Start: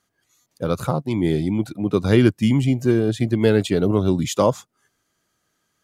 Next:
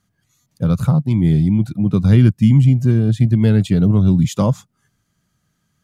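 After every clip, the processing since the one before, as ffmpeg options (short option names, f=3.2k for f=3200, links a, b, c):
-filter_complex "[0:a]lowshelf=f=250:t=q:w=1.5:g=11.5,asplit=2[a][b];[b]acompressor=threshold=-15dB:ratio=6,volume=0dB[c];[a][c]amix=inputs=2:normalize=0,volume=-6.5dB"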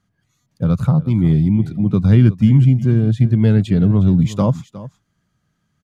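-af "lowpass=f=3.4k:p=1,aecho=1:1:360:0.15"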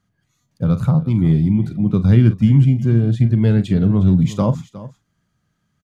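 -filter_complex "[0:a]asplit=2[a][b];[b]adelay=43,volume=-12.5dB[c];[a][c]amix=inputs=2:normalize=0,volume=-1dB"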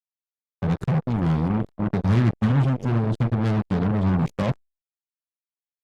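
-af "aeval=exprs='sgn(val(0))*max(abs(val(0))-0.00668,0)':c=same,acrusher=bits=2:mix=0:aa=0.5,volume=-7.5dB" -ar 48000 -c:a libopus -b:a 64k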